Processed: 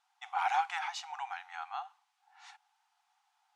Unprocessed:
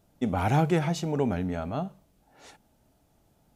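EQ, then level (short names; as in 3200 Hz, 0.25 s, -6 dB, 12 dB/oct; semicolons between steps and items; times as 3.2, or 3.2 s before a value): brick-wall FIR high-pass 720 Hz; air absorption 87 m; 0.0 dB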